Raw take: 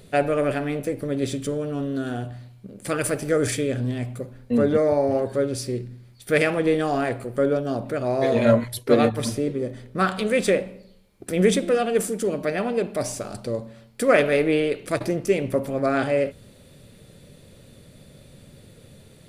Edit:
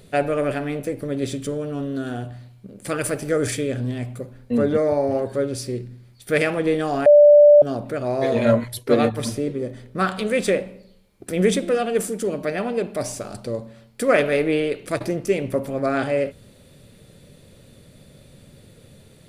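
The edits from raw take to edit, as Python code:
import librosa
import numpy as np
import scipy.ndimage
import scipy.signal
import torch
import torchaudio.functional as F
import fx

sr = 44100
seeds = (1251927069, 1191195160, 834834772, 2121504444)

y = fx.edit(x, sr, fx.bleep(start_s=7.06, length_s=0.56, hz=588.0, db=-6.5), tone=tone)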